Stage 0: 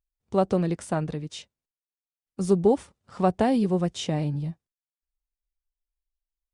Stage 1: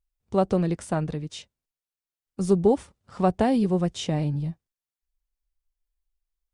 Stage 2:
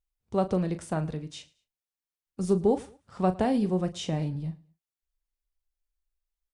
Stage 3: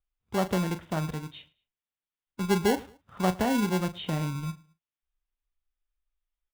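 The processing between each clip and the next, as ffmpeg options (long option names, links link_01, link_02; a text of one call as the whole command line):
ffmpeg -i in.wav -af "lowshelf=frequency=72:gain=8" out.wav
ffmpeg -i in.wav -filter_complex "[0:a]asplit=2[link_01][link_02];[link_02]adelay=38,volume=-11.5dB[link_03];[link_01][link_03]amix=inputs=2:normalize=0,aecho=1:1:109|218:0.075|0.0247,volume=-4dB" out.wav
ffmpeg -i in.wav -filter_complex "[0:a]aresample=8000,aresample=44100,acrossover=split=490|2400[link_01][link_02][link_03];[link_01]acrusher=samples=36:mix=1:aa=0.000001[link_04];[link_04][link_02][link_03]amix=inputs=3:normalize=0" out.wav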